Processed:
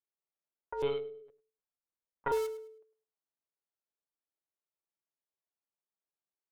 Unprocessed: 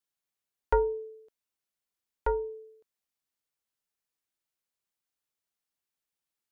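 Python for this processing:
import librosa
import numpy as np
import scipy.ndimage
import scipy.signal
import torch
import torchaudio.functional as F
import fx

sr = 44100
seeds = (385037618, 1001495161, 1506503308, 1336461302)

p1 = fx.low_shelf(x, sr, hz=150.0, db=-8.5)
p2 = np.where(np.abs(p1) >= 10.0 ** (-35.0 / 20.0), p1, 0.0)
p3 = p1 + (p2 * librosa.db_to_amplitude(-7.0))
p4 = fx.notch_comb(p3, sr, f0_hz=250.0)
p5 = fx.over_compress(p4, sr, threshold_db=-26.0, ratio=-0.5)
p6 = fx.env_lowpass(p5, sr, base_hz=740.0, full_db=-27.5)
p7 = fx.tilt_eq(p6, sr, slope=2.5)
p8 = fx.echo_feedback(p7, sr, ms=105, feedback_pct=25, wet_db=-15.5)
p9 = fx.lpc_monotone(p8, sr, seeds[0], pitch_hz=140.0, order=16, at=(0.82, 2.32))
y = p9 * librosa.db_to_amplitude(-1.0)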